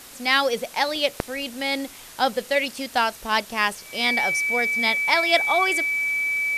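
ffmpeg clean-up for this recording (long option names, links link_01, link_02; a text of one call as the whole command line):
ffmpeg -i in.wav -af "bandreject=frequency=2300:width=30,afftdn=noise_reduction=26:noise_floor=-43" out.wav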